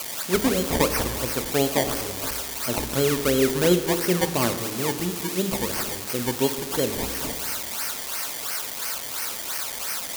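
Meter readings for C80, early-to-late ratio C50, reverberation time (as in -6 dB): 11.5 dB, 10.5 dB, not exponential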